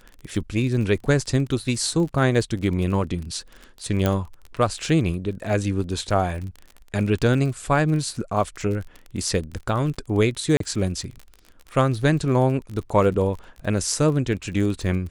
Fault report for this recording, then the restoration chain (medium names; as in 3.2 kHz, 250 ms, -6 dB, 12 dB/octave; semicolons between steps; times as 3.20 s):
crackle 36 per s -30 dBFS
4.06 s: pop -8 dBFS
10.57–10.60 s: dropout 33 ms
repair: de-click; interpolate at 10.57 s, 33 ms